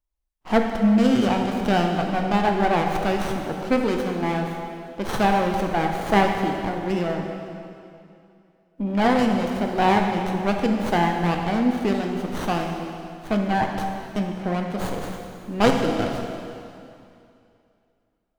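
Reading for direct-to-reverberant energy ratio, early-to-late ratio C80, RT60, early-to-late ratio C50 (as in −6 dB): 2.0 dB, 4.5 dB, 2.6 s, 3.5 dB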